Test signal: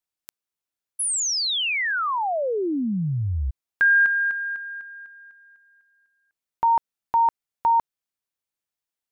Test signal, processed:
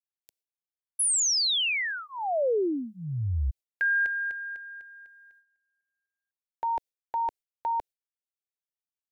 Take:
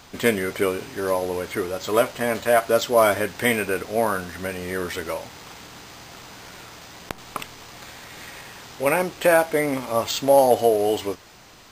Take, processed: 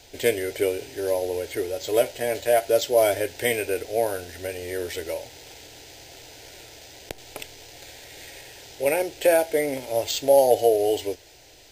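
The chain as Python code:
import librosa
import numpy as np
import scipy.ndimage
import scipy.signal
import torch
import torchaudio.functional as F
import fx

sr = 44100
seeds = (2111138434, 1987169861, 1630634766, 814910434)

y = fx.gate_hold(x, sr, open_db=-43.0, close_db=-44.0, hold_ms=71.0, range_db=-14, attack_ms=0.4, release_ms=77.0)
y = fx.fixed_phaser(y, sr, hz=480.0, stages=4)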